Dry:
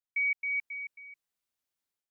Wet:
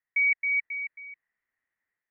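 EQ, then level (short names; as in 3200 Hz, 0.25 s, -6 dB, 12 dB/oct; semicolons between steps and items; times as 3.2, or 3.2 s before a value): synth low-pass 1900 Hz, resonance Q 14; air absorption 320 m; +2.0 dB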